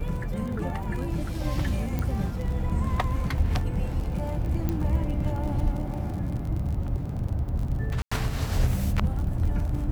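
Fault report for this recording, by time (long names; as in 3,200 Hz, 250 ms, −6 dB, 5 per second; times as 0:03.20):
surface crackle 41 per second −33 dBFS
0:01.99: click −16 dBFS
0:04.69: click −15 dBFS
0:08.02–0:08.12: drop-out 95 ms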